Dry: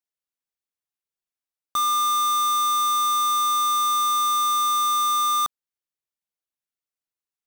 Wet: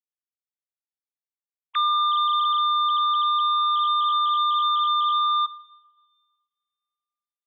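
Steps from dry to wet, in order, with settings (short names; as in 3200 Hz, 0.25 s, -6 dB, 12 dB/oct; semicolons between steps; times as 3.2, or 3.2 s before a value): sine-wave speech; two-slope reverb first 0.82 s, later 2.1 s, from -18 dB, DRR 12.5 dB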